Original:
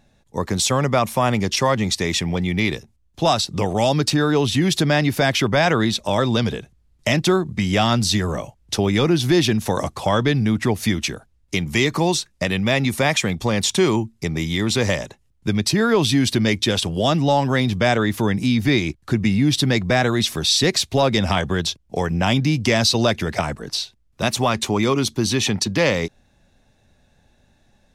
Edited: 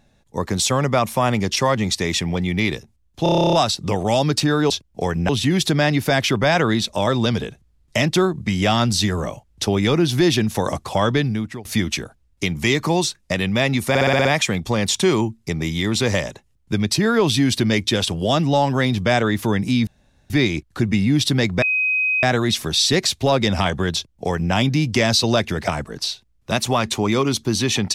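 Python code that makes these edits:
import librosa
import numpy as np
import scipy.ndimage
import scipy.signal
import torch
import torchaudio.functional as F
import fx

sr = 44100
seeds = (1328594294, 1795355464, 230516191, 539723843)

y = fx.edit(x, sr, fx.stutter(start_s=3.23, slice_s=0.03, count=11),
    fx.fade_out_to(start_s=10.27, length_s=0.49, floor_db=-22.0),
    fx.stutter(start_s=13.0, slice_s=0.06, count=7),
    fx.insert_room_tone(at_s=18.62, length_s=0.43),
    fx.insert_tone(at_s=19.94, length_s=0.61, hz=2520.0, db=-16.5),
    fx.duplicate(start_s=21.65, length_s=0.59, to_s=4.4), tone=tone)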